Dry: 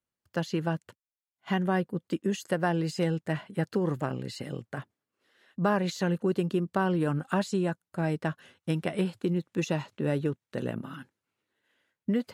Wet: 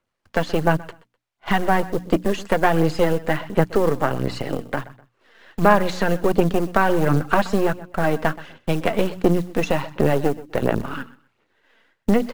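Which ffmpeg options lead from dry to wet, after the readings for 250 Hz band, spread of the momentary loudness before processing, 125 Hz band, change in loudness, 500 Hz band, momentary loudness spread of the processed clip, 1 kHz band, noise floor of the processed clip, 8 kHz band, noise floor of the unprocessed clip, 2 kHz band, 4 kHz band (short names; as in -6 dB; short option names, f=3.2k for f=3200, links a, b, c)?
+7.0 dB, 10 LU, +6.0 dB, +9.0 dB, +10.5 dB, 9 LU, +12.5 dB, -74 dBFS, +6.5 dB, under -85 dBFS, +11.0 dB, +7.5 dB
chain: -filter_complex "[0:a]aeval=exprs='if(lt(val(0),0),0.251*val(0),val(0))':c=same,aemphasis=mode=reproduction:type=75fm,bandreject=f=60:t=h:w=6,bandreject=f=120:t=h:w=6,bandreject=f=180:t=h:w=6,bandreject=f=240:t=h:w=6,bandreject=f=300:t=h:w=6,asplit=2[a][b];[b]acompressor=threshold=-40dB:ratio=8,volume=0dB[c];[a][c]amix=inputs=2:normalize=0,acrusher=bits=7:mode=log:mix=0:aa=0.000001,aecho=1:1:126|252:0.119|0.0285,aphaser=in_gain=1:out_gain=1:delay=4.5:decay=0.38:speed=1.4:type=sinusoidal,acrossover=split=430[d][e];[e]acontrast=33[f];[d][f]amix=inputs=2:normalize=0,volume=7dB"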